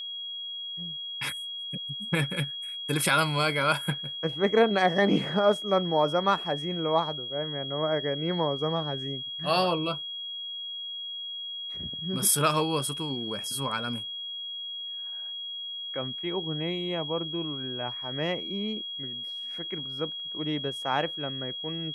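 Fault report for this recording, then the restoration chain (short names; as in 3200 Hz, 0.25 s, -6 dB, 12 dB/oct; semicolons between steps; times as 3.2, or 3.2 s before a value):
tone 3300 Hz -34 dBFS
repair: notch 3300 Hz, Q 30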